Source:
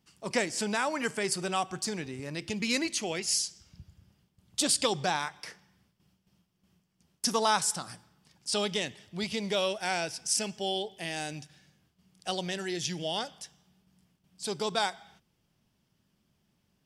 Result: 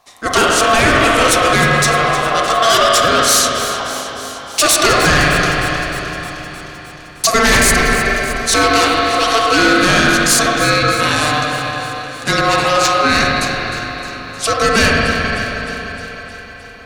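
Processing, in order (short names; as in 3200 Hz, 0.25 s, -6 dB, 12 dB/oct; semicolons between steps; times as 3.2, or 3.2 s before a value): spring tank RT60 3.3 s, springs 39/45/53 ms, chirp 60 ms, DRR -1 dB; sine folder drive 11 dB, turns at -10 dBFS; ring modulator 900 Hz; on a send: echo with dull and thin repeats by turns 0.154 s, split 2100 Hz, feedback 82%, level -11 dB; on the sum: gain +6 dB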